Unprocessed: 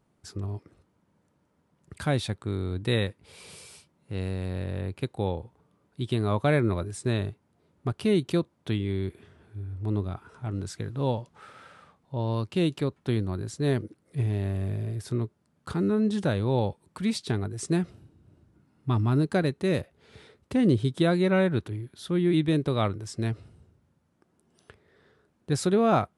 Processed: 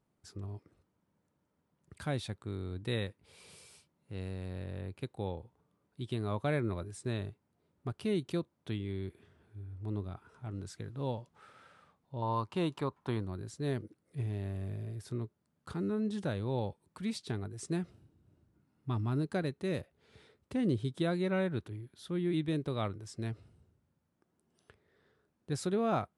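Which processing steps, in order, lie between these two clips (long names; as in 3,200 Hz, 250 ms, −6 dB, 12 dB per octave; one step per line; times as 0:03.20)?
0:12.22–0:13.25: parametric band 990 Hz +15 dB 0.91 octaves
level −9 dB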